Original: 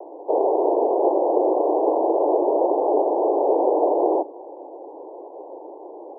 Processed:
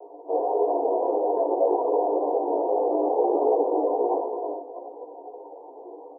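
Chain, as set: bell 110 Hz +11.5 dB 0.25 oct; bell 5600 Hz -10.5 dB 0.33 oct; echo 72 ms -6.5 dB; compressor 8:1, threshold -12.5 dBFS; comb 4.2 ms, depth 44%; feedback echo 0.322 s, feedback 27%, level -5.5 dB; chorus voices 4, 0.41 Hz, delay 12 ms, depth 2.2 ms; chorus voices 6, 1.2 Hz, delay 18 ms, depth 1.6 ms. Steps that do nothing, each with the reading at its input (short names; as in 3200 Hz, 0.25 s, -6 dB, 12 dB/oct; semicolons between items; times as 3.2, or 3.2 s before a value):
bell 110 Hz: input band starts at 240 Hz; bell 5600 Hz: input band ends at 1100 Hz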